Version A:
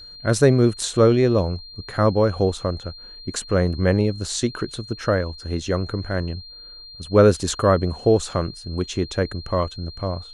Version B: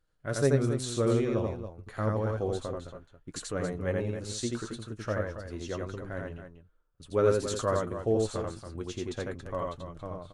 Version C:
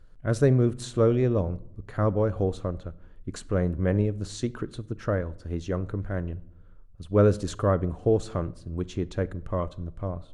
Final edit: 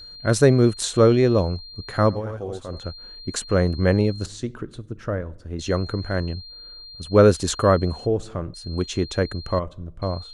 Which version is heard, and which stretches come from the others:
A
2.14–2.74 s: from B, crossfade 0.16 s
4.26–5.59 s: from C
8.06–8.54 s: from C
9.59–10.02 s: from C

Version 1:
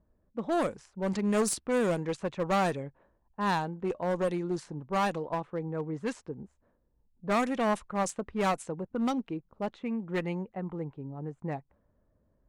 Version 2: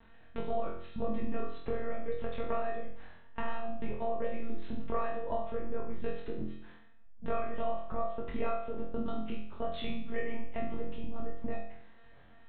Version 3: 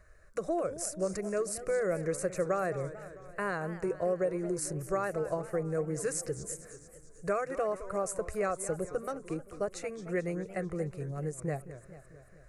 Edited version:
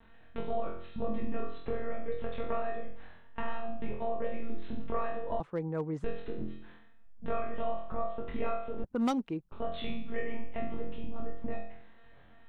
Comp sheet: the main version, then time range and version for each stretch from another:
2
5.40–6.04 s: from 1
8.84–9.52 s: from 1
not used: 3

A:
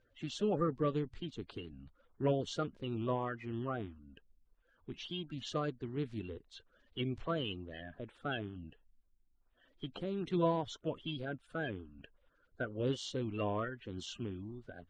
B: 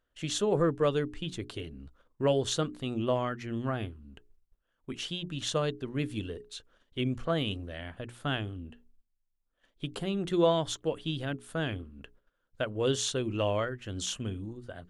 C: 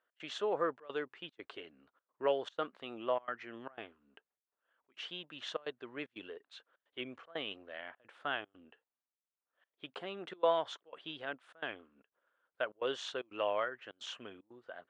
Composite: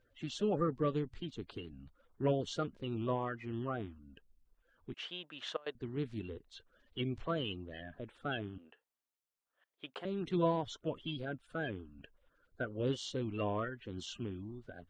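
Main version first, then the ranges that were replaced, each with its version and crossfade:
A
4.94–5.75 s: from C
8.58–10.05 s: from C
not used: B

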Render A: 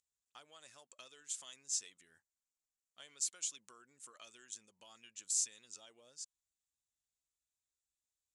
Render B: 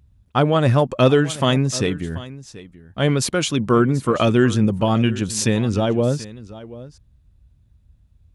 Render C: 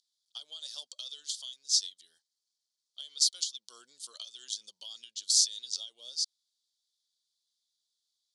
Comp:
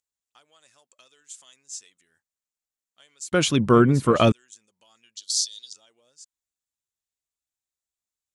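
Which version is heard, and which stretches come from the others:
A
3.32–4.32 s: from B
5.17–5.73 s: from C

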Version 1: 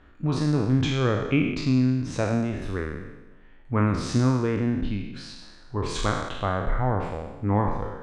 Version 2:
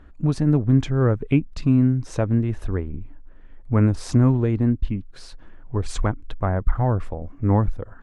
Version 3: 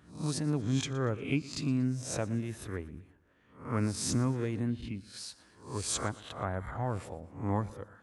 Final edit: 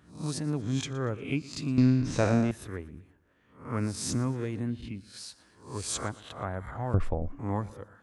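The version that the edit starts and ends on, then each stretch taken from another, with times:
3
1.78–2.51 s: from 1
6.94–7.39 s: from 2

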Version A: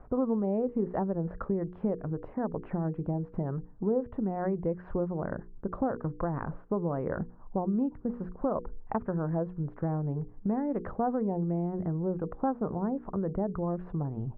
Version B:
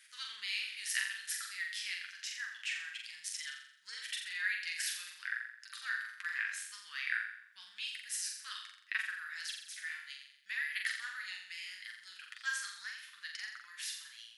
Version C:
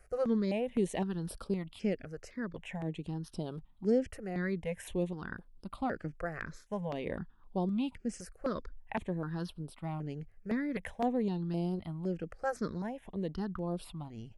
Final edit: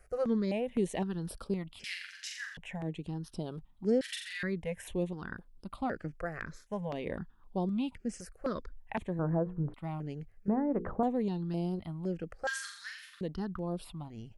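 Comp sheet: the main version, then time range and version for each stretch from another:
C
1.84–2.57 s: from B
4.01–4.43 s: from B
9.19–9.74 s: from A
10.48–11.03 s: from A
12.47–13.21 s: from B

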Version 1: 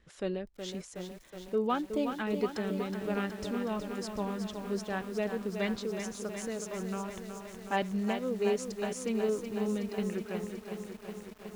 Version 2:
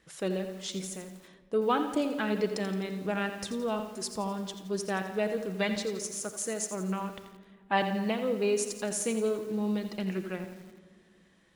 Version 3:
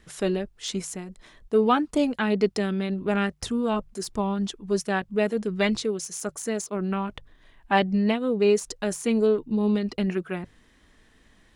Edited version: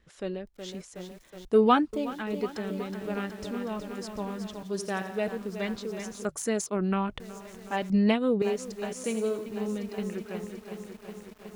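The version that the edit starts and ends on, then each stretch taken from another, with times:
1
1.45–1.93 s: from 3
4.63–5.28 s: from 2
6.25–7.20 s: from 3
7.90–8.42 s: from 3
9.04–9.46 s: from 2

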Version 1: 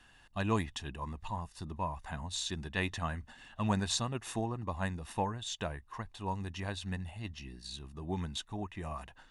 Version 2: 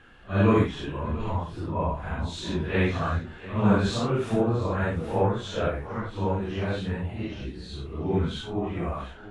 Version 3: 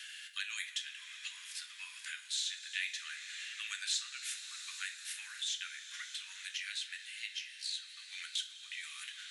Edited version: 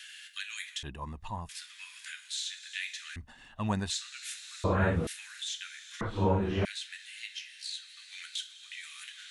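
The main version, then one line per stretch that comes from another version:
3
0.83–1.49 s: from 1
3.16–3.90 s: from 1
4.64–5.07 s: from 2
6.01–6.65 s: from 2

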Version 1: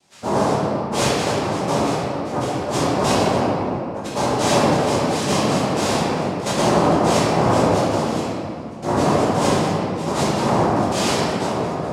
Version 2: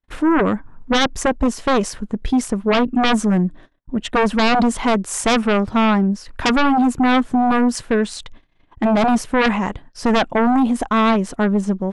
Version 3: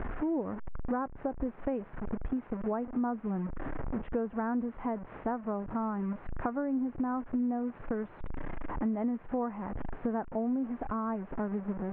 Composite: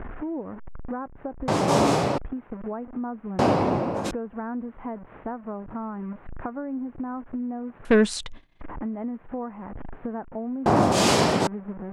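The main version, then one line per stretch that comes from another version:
3
1.48–2.18 s: from 1
3.39–4.11 s: from 1
7.85–8.61 s: from 2
10.66–11.47 s: from 1

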